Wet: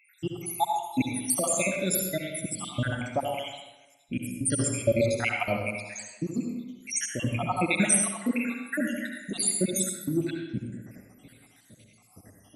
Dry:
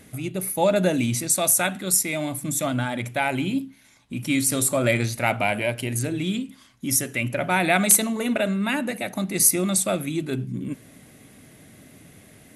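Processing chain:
time-frequency cells dropped at random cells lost 84%
convolution reverb RT60 1.1 s, pre-delay 63 ms, DRR 1 dB

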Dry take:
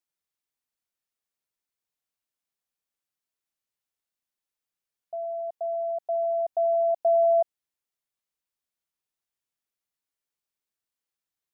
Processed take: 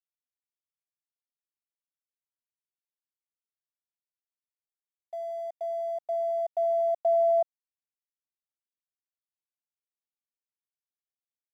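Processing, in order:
Bessel high-pass filter 590 Hz, order 8
dead-zone distortion −58.5 dBFS

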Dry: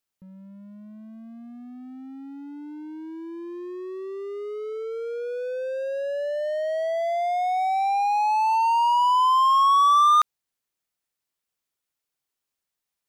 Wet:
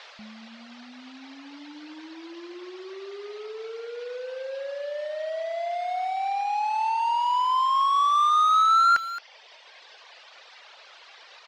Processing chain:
noise in a band 450–4,200 Hz −47 dBFS
reverb reduction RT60 1.9 s
change of speed 1.14×
high-frequency loss of the air 66 metres
far-end echo of a speakerphone 220 ms, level −9 dB
level +1.5 dB

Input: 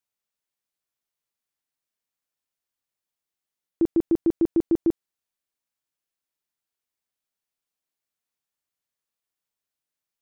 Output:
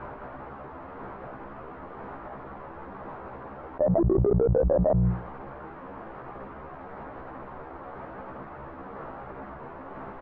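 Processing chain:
pitch shifter swept by a sawtooth +11.5 semitones, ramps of 995 ms
mains-hum notches 60/120/180 Hz
brickwall limiter −22.5 dBFS, peak gain reduction 7.5 dB
double-tracking delay 15 ms −2.5 dB
power curve on the samples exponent 0.7
low-pass filter 1,200 Hz 24 dB per octave
envelope flattener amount 100%

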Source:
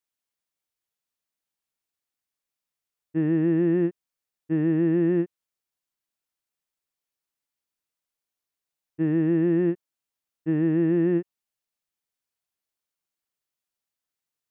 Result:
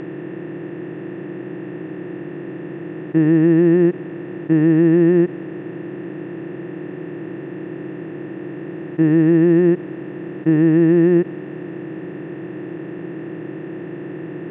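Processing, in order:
compressor on every frequency bin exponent 0.2
high-frequency loss of the air 95 metres
level +7 dB

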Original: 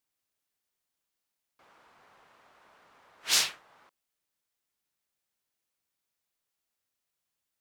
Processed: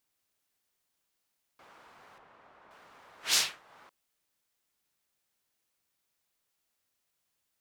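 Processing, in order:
0:02.18–0:02.71: low-pass filter 1,600 Hz 6 dB per octave
in parallel at +2.5 dB: downward compressor, threshold −43 dBFS, peak gain reduction 20.5 dB
on the sum: level −3 dB

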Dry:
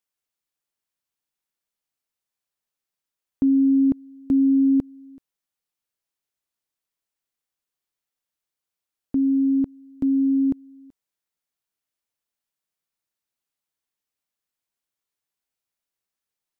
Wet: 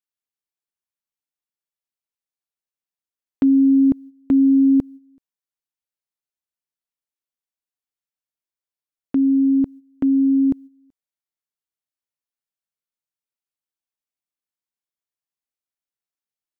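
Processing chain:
noise gate −38 dBFS, range −12 dB
level +3.5 dB

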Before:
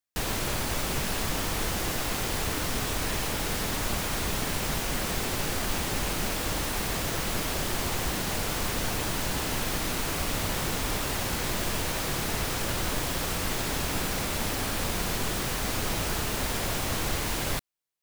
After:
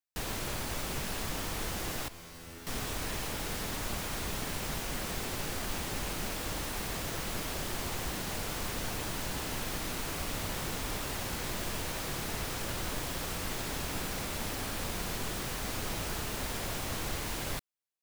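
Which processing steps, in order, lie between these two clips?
0:02.08–0:02.67: tuned comb filter 84 Hz, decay 0.9 s, harmonics all, mix 90%
level −6.5 dB

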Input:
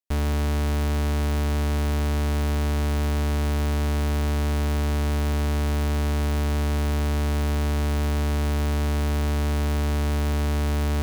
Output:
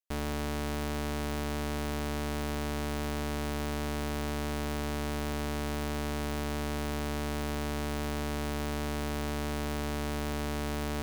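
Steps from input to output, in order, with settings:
parametric band 71 Hz −10 dB 1.7 octaves
level −4.5 dB

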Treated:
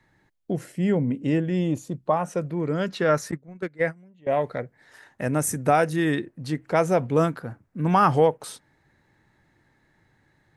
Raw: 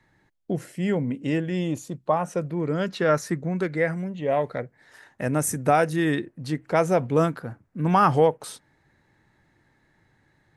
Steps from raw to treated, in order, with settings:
0:00.72–0:02.10: tilt shelving filter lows +3 dB, about 770 Hz
0:03.31–0:04.27: noise gate −23 dBFS, range −21 dB

